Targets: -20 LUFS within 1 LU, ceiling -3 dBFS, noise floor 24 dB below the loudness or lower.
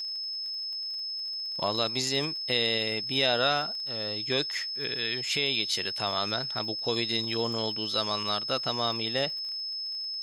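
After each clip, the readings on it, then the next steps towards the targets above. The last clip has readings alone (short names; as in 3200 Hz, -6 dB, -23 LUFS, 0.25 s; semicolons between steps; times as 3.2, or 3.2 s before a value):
ticks 36/s; steady tone 5200 Hz; tone level -32 dBFS; loudness -28.0 LUFS; peak -11.5 dBFS; loudness target -20.0 LUFS
-> de-click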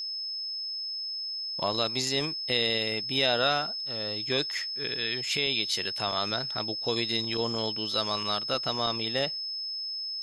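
ticks 0/s; steady tone 5200 Hz; tone level -32 dBFS
-> notch 5200 Hz, Q 30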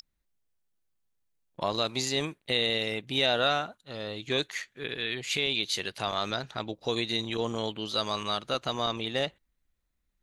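steady tone none; loudness -30.0 LUFS; peak -12.0 dBFS; loudness target -20.0 LUFS
-> gain +10 dB; limiter -3 dBFS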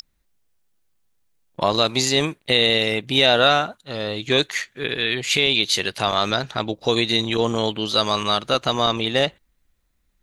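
loudness -20.0 LUFS; peak -3.0 dBFS; noise floor -68 dBFS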